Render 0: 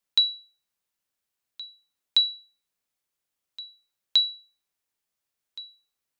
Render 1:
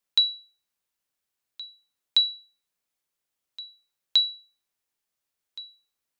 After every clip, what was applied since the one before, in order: notches 50/100/150/200 Hz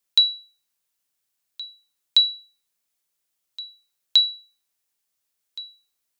high shelf 3500 Hz +7.5 dB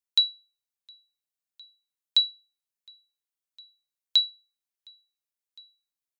echo 0.712 s -20.5 dB; upward expander 1.5:1, over -34 dBFS; gain -4 dB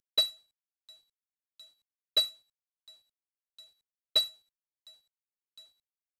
CVSD 64 kbps; gain -3.5 dB

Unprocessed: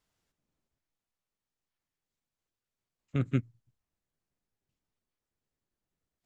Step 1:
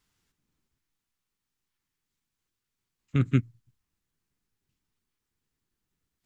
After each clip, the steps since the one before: bell 610 Hz -11 dB 0.77 oct; gain +6 dB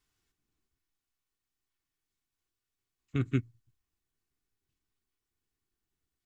comb 2.7 ms, depth 41%; gain -5 dB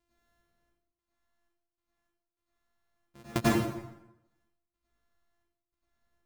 sample sorter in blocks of 128 samples; step gate "xxx..xx..x.." 76 bpm -24 dB; plate-style reverb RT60 0.91 s, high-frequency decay 0.75×, pre-delay 80 ms, DRR -9 dB; gain -1 dB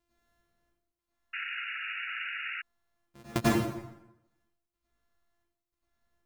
painted sound noise, 1.33–2.62, 1300–2900 Hz -37 dBFS

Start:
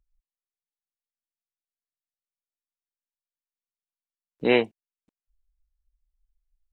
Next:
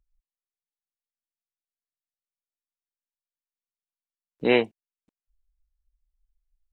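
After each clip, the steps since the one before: nothing audible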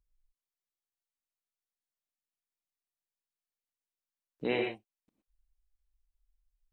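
compressor 1.5:1, threshold -33 dBFS, peak gain reduction 7 dB; non-linear reverb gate 0.14 s rising, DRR 2.5 dB; gain -5 dB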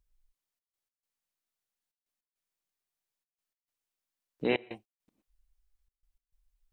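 step gate "xxxx.x.xx" 102 bpm -24 dB; gain +3.5 dB

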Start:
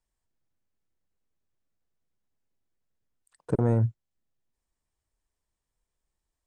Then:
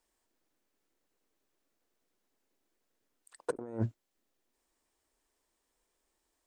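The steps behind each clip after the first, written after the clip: resonant low shelf 200 Hz -12.5 dB, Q 1.5; negative-ratio compressor -34 dBFS, ratio -0.5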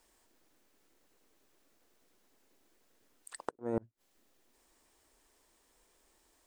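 flipped gate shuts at -29 dBFS, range -38 dB; gain +10 dB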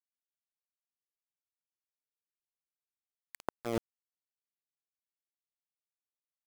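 sample gate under -32.5 dBFS; gain +1 dB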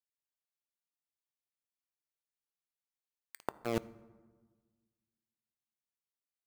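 in parallel at -4 dB: bit-crush 5-bit; on the sum: reverb RT60 1.4 s, pre-delay 4 ms, DRR 17 dB; gain -4.5 dB

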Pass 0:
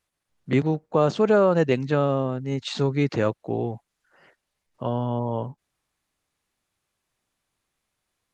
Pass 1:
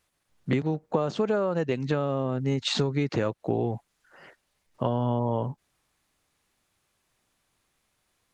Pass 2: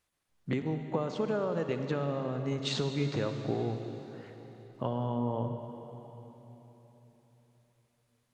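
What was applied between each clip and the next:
compressor 16:1, threshold -27 dBFS, peak gain reduction 14 dB; gain +5.5 dB
reverb RT60 3.8 s, pre-delay 47 ms, DRR 6.5 dB; gain -6.5 dB

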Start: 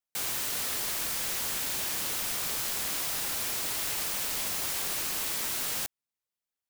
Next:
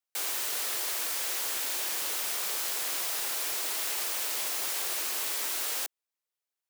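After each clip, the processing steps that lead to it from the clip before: HPF 330 Hz 24 dB/oct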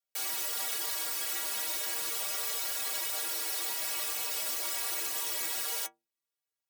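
metallic resonator 70 Hz, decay 0.43 s, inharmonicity 0.03; gain +7.5 dB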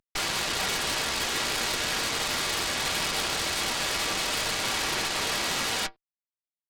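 CVSD 64 kbps; downsampling 11025 Hz; added harmonics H 8 -9 dB, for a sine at -25 dBFS; gain +7 dB

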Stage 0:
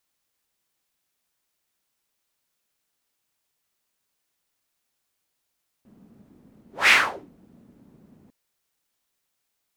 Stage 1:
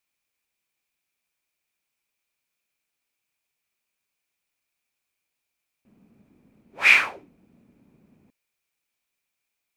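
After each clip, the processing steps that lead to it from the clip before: bell 2400 Hz +13 dB 0.26 oct; gain -5.5 dB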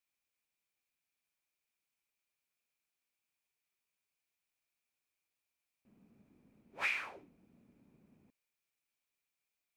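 compressor 12:1, threshold -24 dBFS, peak gain reduction 14.5 dB; gain -8 dB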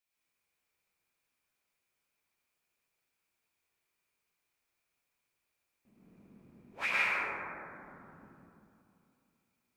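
plate-style reverb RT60 2.7 s, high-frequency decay 0.25×, pre-delay 85 ms, DRR -7.5 dB

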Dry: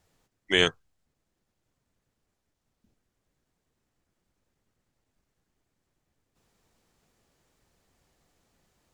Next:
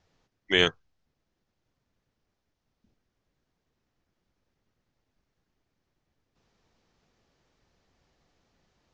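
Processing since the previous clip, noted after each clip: steep low-pass 6200 Hz 36 dB/oct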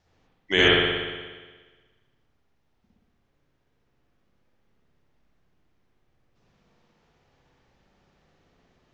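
spring tank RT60 1.4 s, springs 59 ms, chirp 65 ms, DRR -5.5 dB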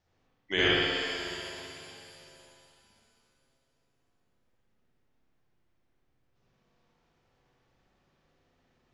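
shimmer reverb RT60 2.9 s, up +7 st, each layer -8 dB, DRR 4 dB; gain -7.5 dB

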